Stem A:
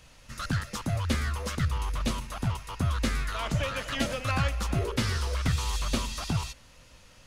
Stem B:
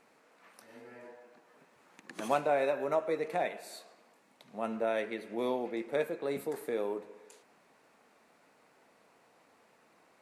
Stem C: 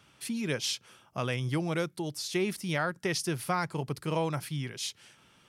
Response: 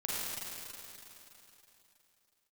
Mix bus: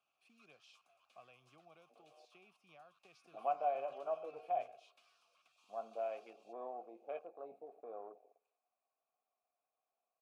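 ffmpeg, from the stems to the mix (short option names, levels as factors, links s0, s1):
-filter_complex "[0:a]acompressor=threshold=0.0398:ratio=3,aderivative,volume=0.355[s0];[1:a]afwtdn=0.01,adelay=1150,volume=0.841[s1];[2:a]acrossover=split=190|3000[s2][s3][s4];[s3]acompressor=threshold=0.0158:ratio=6[s5];[s2][s5][s4]amix=inputs=3:normalize=0,volume=0.251[s6];[s0][s1][s6]amix=inputs=3:normalize=0,asplit=3[s7][s8][s9];[s7]bandpass=f=730:t=q:w=8,volume=1[s10];[s8]bandpass=f=1090:t=q:w=8,volume=0.501[s11];[s9]bandpass=f=2440:t=q:w=8,volume=0.355[s12];[s10][s11][s12]amix=inputs=3:normalize=0"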